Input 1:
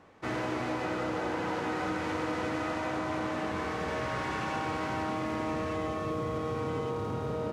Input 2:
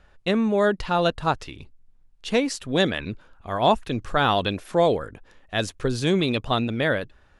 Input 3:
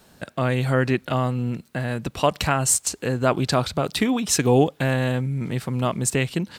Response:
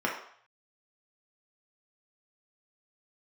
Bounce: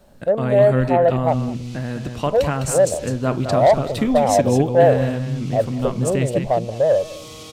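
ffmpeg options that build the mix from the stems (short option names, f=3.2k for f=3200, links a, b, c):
-filter_complex "[0:a]aexciter=amount=10.2:drive=7.1:freq=2.6k,adelay=1050,volume=-7dB[a];[1:a]firequalizer=gain_entry='entry(140,0);entry(260,-14);entry(560,14);entry(1600,-27)':delay=0.05:min_phase=1,acontrast=37,volume=-5.5dB,asplit=2[b][c];[c]volume=-20dB[d];[2:a]lowshelf=f=380:g=9.5,volume=-7dB,asplit=4[e][f][g][h];[f]volume=-20dB[i];[g]volume=-6.5dB[j];[h]apad=whole_len=378163[k];[a][k]sidechaincompress=threshold=-37dB:ratio=8:attack=32:release=704[l];[3:a]atrim=start_sample=2205[m];[i][m]afir=irnorm=-1:irlink=0[n];[d][j]amix=inputs=2:normalize=0,aecho=0:1:206:1[o];[l][b][e][n][o]amix=inputs=5:normalize=0"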